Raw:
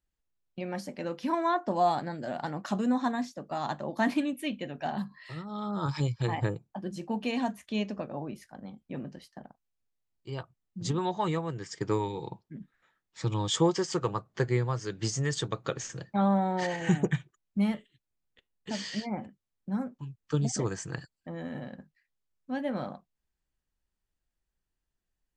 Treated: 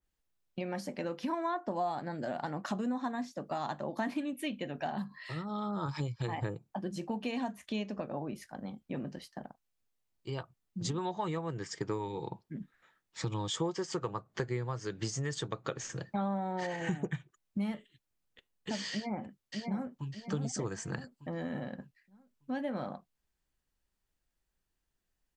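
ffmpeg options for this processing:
-filter_complex "[0:a]asplit=2[a][b];[b]afade=t=in:st=18.92:d=0.01,afade=t=out:st=20.1:d=0.01,aecho=0:1:600|1200|1800|2400:0.501187|0.175416|0.0613954|0.0214884[c];[a][c]amix=inputs=2:normalize=0,lowshelf=f=150:g=-3,acompressor=threshold=-37dB:ratio=3,adynamicequalizer=threshold=0.00251:dfrequency=2300:dqfactor=0.7:tfrequency=2300:tqfactor=0.7:attack=5:release=100:ratio=0.375:range=2:mode=cutabove:tftype=highshelf,volume=3dB"

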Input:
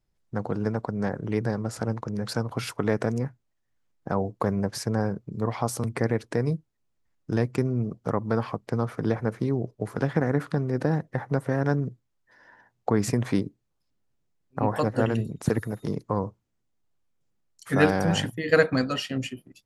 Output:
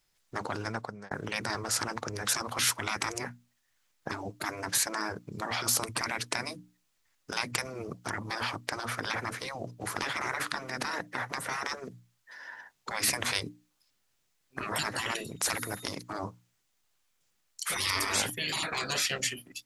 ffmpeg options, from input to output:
-filter_complex "[0:a]asplit=2[a][b];[a]atrim=end=1.11,asetpts=PTS-STARTPTS,afade=t=out:st=0.48:d=0.63[c];[b]atrim=start=1.11,asetpts=PTS-STARTPTS,afade=t=in:d=0.004:c=hsin[d];[c][d]concat=n=2:v=0:a=1,tiltshelf=f=800:g=-9.5,bandreject=f=60:t=h:w=6,bandreject=f=120:t=h:w=6,bandreject=f=180:t=h:w=6,bandreject=f=240:t=h:w=6,bandreject=f=300:t=h:w=6,afftfilt=real='re*lt(hypot(re,im),0.0794)':imag='im*lt(hypot(re,im),0.0794)':win_size=1024:overlap=0.75,volume=4.5dB"

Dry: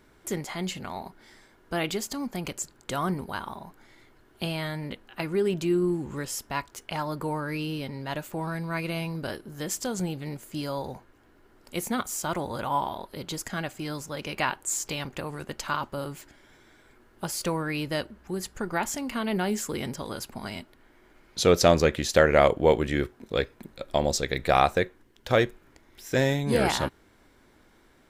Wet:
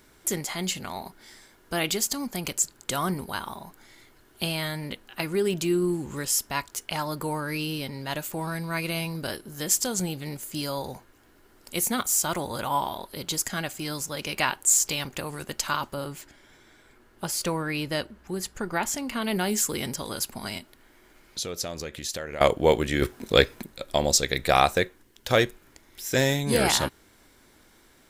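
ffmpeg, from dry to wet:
-filter_complex "[0:a]asettb=1/sr,asplit=3[a][b][c];[a]atrim=end=15.944[d];[b]atrim=start=15.94:end=19.22,asetpts=PTS-STARTPTS,afade=t=in:d=0.004:c=qsin,afade=t=out:st=3.276:d=0.004:c=qsin,highshelf=f=4.7k:g=-8[e];[c]atrim=start=19.216[f];[d][e]acrossfade=d=0.004:c1=hsin:c2=qsin[g];[g][f]acrossfade=d=0.004:c1=qsin:c2=hsin,asettb=1/sr,asplit=3[h][i][j];[h]atrim=end=20.584[k];[i]atrim=start=20.58:end=22.41,asetpts=PTS-STARTPTS,afade=t=in:d=0.004:c=qsin,afade=t=out:st=1.826:d=0.004:c=qsin,acompressor=threshold=-40dB:ratio=2.5:attack=3.2:release=140:knee=1:detection=peak[l];[j]atrim=start=22.406[m];[k][l]acrossfade=d=0.004:c1=hsin:c2=qsin[n];[n][m]acrossfade=d=0.004:c1=qsin:c2=hsin,asplit=3[o][p][q];[o]atrim=end=23.022[r];[p]atrim=start=23.018:end=23.632,asetpts=PTS-STARTPTS,volume=7dB[s];[q]atrim=start=23.628[t];[r][s]acrossfade=d=0.004:c1=hsin:c2=hsin[u];[u][t]acrossfade=d=0.004:c1=hsin:c2=hsin,highshelf=f=3.6k:g=11.5"

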